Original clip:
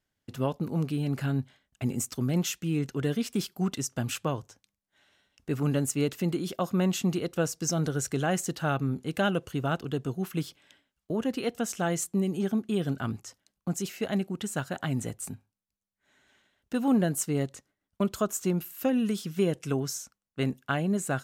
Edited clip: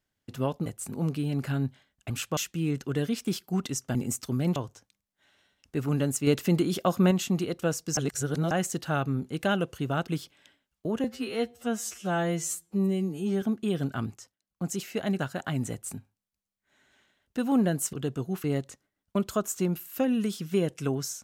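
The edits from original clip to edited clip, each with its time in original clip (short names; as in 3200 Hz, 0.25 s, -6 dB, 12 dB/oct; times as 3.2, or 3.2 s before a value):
1.84–2.45 swap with 4.03–4.3
6.01–6.85 gain +4.5 dB
7.71–8.25 reverse
9.82–10.33 move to 17.29
11.29–12.48 stretch 2×
13.17–13.74 dip -16 dB, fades 0.25 s
14.25–14.55 cut
15.07–15.33 copy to 0.66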